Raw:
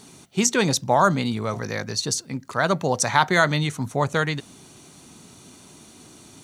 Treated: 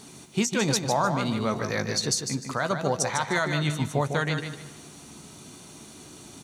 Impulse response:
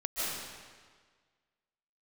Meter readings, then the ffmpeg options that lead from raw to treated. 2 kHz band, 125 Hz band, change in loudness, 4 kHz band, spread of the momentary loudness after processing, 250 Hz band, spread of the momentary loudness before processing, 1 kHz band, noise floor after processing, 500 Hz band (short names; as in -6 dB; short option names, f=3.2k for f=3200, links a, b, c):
-5.5 dB, -2.5 dB, -4.0 dB, -2.5 dB, 20 LU, -2.5 dB, 9 LU, -6.0 dB, -47 dBFS, -4.0 dB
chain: -filter_complex "[0:a]alimiter=limit=-14.5dB:level=0:latency=1:release=463,asplit=2[a][b];[b]adelay=14,volume=-12.5dB[c];[a][c]amix=inputs=2:normalize=0,aecho=1:1:151|302|453:0.447|0.125|0.035,asplit=2[d][e];[1:a]atrim=start_sample=2205[f];[e][f]afir=irnorm=-1:irlink=0,volume=-25.5dB[g];[d][g]amix=inputs=2:normalize=0"